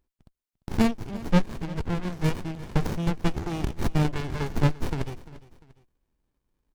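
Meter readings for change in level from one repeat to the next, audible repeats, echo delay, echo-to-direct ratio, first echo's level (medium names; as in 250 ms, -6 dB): -8.0 dB, 2, 347 ms, -17.5 dB, -18.0 dB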